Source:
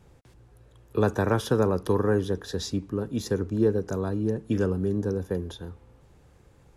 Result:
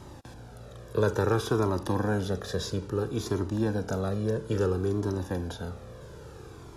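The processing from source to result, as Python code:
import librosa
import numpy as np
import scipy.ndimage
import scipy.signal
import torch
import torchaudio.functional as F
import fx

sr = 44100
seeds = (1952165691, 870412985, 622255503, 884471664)

y = fx.bin_compress(x, sr, power=0.6)
y = fx.comb_cascade(y, sr, direction='falling', hz=0.59)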